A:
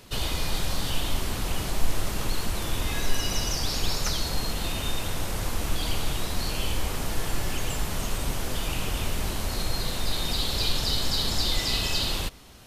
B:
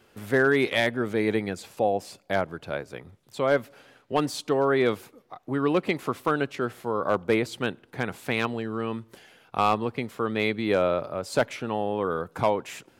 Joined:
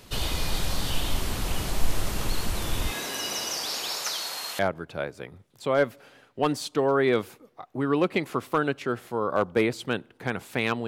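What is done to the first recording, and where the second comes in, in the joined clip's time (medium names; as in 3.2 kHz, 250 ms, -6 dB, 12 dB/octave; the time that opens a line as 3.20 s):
A
2.90–4.59 s: high-pass 230 Hz -> 930 Hz
4.59 s: go over to B from 2.32 s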